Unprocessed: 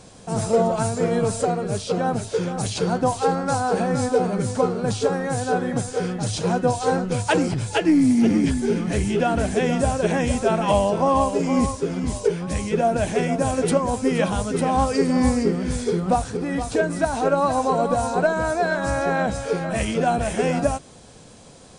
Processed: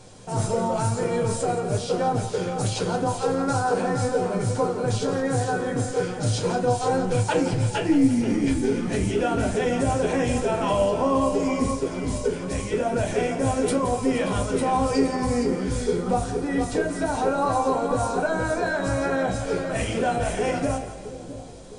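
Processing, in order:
brickwall limiter −13 dBFS, peak gain reduction 5 dB
echo with a time of its own for lows and highs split 590 Hz, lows 662 ms, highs 170 ms, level −12 dB
convolution reverb RT60 0.25 s, pre-delay 7 ms, DRR 2 dB
level −3.5 dB

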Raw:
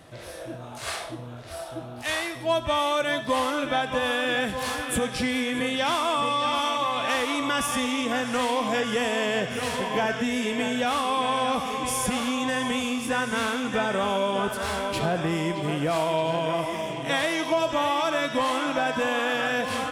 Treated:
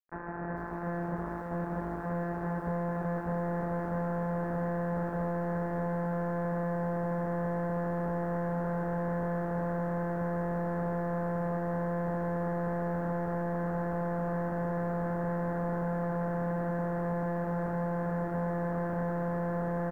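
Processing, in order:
samples sorted by size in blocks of 256 samples
low-shelf EQ 450 Hz −4.5 dB
comb filter 4.7 ms, depth 86%
hum removal 218 Hz, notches 4
brickwall limiter −15 dBFS, peak gain reduction 4 dB
downward compressor 10 to 1, threshold −29 dBFS, peak gain reduction 8 dB
log-companded quantiser 2 bits
elliptic low-pass filter 1,700 Hz, stop band 50 dB
single-tap delay 586 ms −5 dB
feedback echo at a low word length 443 ms, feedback 35%, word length 8 bits, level −14 dB
level −6 dB

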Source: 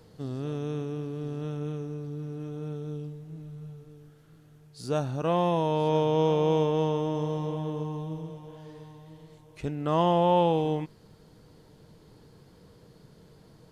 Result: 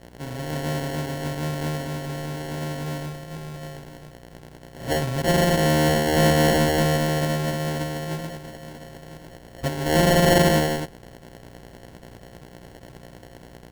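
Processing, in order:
samples sorted by size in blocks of 64 samples
automatic gain control gain up to 5.5 dB
hum with harmonics 60 Hz, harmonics 38, −46 dBFS −2 dB per octave
decimation without filtering 36×

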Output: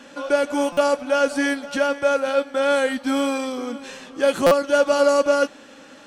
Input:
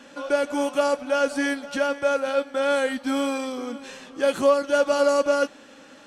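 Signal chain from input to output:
buffer that repeats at 0:00.72/0:04.46, samples 256, times 8
level +3 dB

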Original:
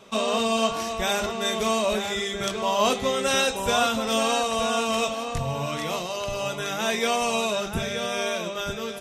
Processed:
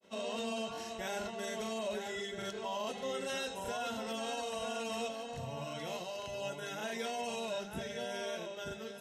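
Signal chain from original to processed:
notch comb filter 1,200 Hz
granular cloud 117 ms, grains 21 per second, spray 26 ms, pitch spread up and down by 0 semitones
brickwall limiter −20 dBFS, peak gain reduction 7 dB
level −9 dB

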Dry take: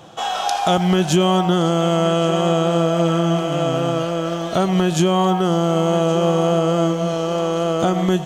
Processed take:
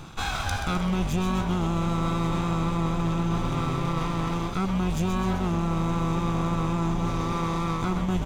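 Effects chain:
lower of the sound and its delayed copy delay 0.82 ms
low-shelf EQ 150 Hz +9 dB
echo with shifted repeats 129 ms, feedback 59%, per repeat −140 Hz, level −6.5 dB
reversed playback
downward compressor 4 to 1, threshold −25 dBFS, peak gain reduction 14.5 dB
reversed playback

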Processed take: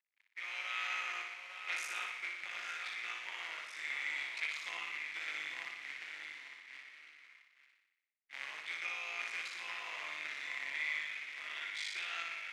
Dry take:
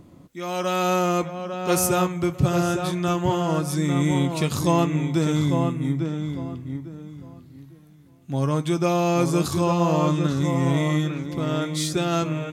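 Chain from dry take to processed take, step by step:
sub-harmonics by changed cycles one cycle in 3, muted
in parallel at +1.5 dB: downward compressor 5 to 1, threshold −33 dBFS, peak gain reduction 16 dB
on the sum: bit reduction 6 bits
four-pole ladder band-pass 2,300 Hz, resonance 70%
downward expander −45 dBFS
on a send: flutter between parallel walls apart 10.2 metres, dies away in 0.84 s
on the sum: level −2 dB

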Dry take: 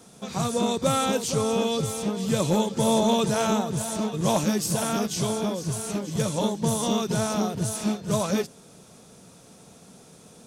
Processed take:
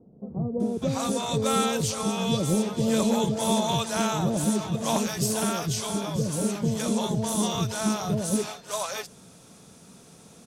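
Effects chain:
multiband delay without the direct sound lows, highs 600 ms, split 570 Hz

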